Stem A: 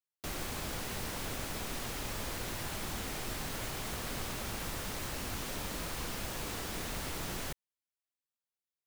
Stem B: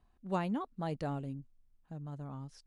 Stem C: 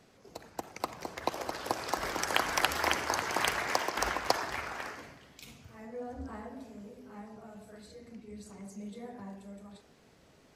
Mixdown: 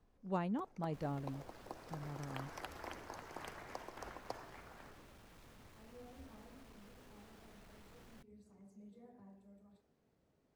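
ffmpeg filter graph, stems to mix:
-filter_complex "[0:a]asoftclip=type=tanh:threshold=-39dB,adelay=700,volume=-16dB[a];[1:a]volume=-3.5dB[b];[2:a]equalizer=f=2.2k:w=0.38:g=-6,volume=-13.5dB[c];[a][b][c]amix=inputs=3:normalize=0,highshelf=f=3.5k:g=-9.5"

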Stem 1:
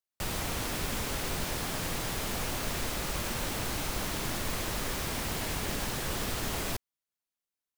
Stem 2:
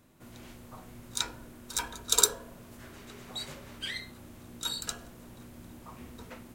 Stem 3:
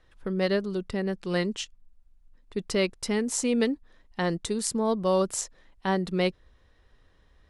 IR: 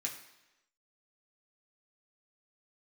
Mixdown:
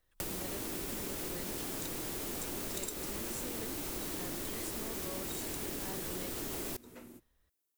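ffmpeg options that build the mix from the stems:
-filter_complex "[0:a]volume=-1dB,asplit=2[a][b];[b]volume=-23dB[c];[1:a]asoftclip=type=tanh:threshold=-13dB,adelay=650,volume=-10.5dB,asplit=2[d][e];[e]volume=-12dB[f];[2:a]volume=-15.5dB[g];[a][d]amix=inputs=2:normalize=0,equalizer=f=340:t=o:w=1.1:g=12,acompressor=threshold=-39dB:ratio=1.5,volume=0dB[h];[3:a]atrim=start_sample=2205[i];[c][f]amix=inputs=2:normalize=0[j];[j][i]afir=irnorm=-1:irlink=0[k];[g][h][k]amix=inputs=3:normalize=0,highshelf=f=7.4k:g=11.5,acompressor=threshold=-36dB:ratio=6"

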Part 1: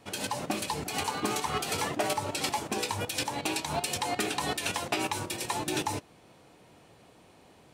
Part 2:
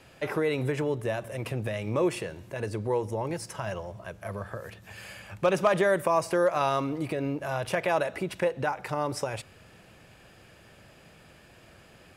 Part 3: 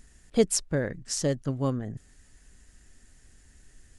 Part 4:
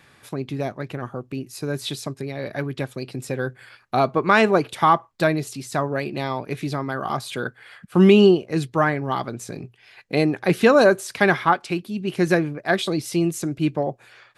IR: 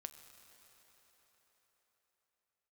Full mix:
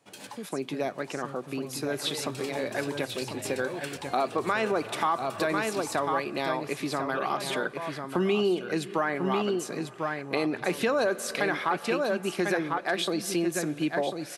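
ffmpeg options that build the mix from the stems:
-filter_complex "[0:a]volume=-10.5dB,asplit=2[a][b];[b]volume=-17.5dB[c];[1:a]lowpass=f=3.6k:t=q:w=2.5,adelay=1700,volume=-12dB,asplit=3[d][e][f];[d]atrim=end=7.97,asetpts=PTS-STARTPTS,afade=t=out:st=7.966:d=0.004:c=hsin[g];[e]atrim=start=7.97:end=10.49,asetpts=PTS-STARTPTS,volume=0[h];[f]atrim=start=10.49,asetpts=PTS-STARTPTS,afade=t=in:d=0.004:c=hsin[i];[g][h][i]concat=n=3:v=0:a=1[j];[2:a]acrossover=split=300[k][l];[l]acompressor=threshold=-29dB:ratio=6[m];[k][m]amix=inputs=2:normalize=0,volume=-14.5dB,asplit=2[n][o];[3:a]equalizer=f=66:t=o:w=2.4:g=-12.5,adelay=200,volume=-1.5dB,asplit=3[p][q][r];[q]volume=-4.5dB[s];[r]volume=-7dB[t];[o]apad=whole_len=341005[u];[a][u]sidechaincompress=threshold=-59dB:ratio=8:attack=16:release=390[v];[v][n][p]amix=inputs=3:normalize=0,highpass=f=120:w=0.5412,highpass=f=120:w=1.3066,alimiter=limit=-15dB:level=0:latency=1:release=31,volume=0dB[w];[4:a]atrim=start_sample=2205[x];[s][x]afir=irnorm=-1:irlink=0[y];[c][t]amix=inputs=2:normalize=0,aecho=0:1:1045:1[z];[j][w][y][z]amix=inputs=4:normalize=0,acompressor=threshold=-27dB:ratio=2"

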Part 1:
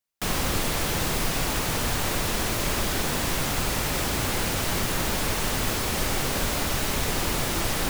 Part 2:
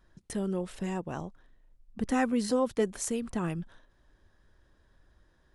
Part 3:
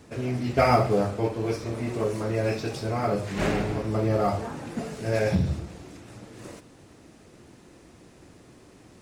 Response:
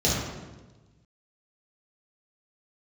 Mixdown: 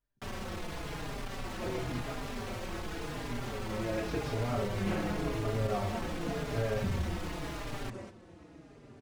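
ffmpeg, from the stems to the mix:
-filter_complex "[0:a]volume=28.5dB,asoftclip=hard,volume=-28.5dB,volume=-3.5dB[a];[1:a]volume=-20dB,asplit=2[b][c];[2:a]acompressor=threshold=-28dB:ratio=6,adelay=1500,volume=1.5dB[d];[c]apad=whole_len=463639[e];[d][e]sidechaincompress=threshold=-59dB:ratio=8:attack=16:release=426[f];[a][b][f]amix=inputs=3:normalize=0,aemphasis=mode=reproduction:type=75kf,asplit=2[g][h];[h]adelay=4.5,afreqshift=-0.91[i];[g][i]amix=inputs=2:normalize=1"

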